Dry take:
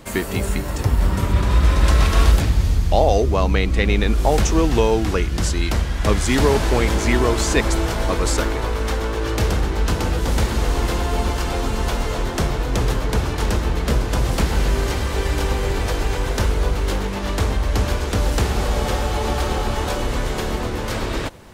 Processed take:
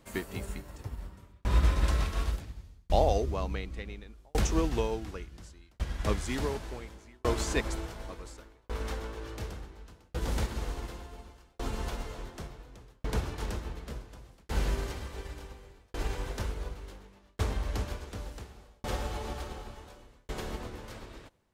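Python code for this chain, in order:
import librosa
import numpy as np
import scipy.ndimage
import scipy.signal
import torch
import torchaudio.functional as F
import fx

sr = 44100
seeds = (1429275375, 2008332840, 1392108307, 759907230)

y = fx.tremolo_shape(x, sr, shape='saw_down', hz=0.69, depth_pct=100)
y = fx.upward_expand(y, sr, threshold_db=-31.0, expansion=1.5)
y = y * 10.0 ** (-7.0 / 20.0)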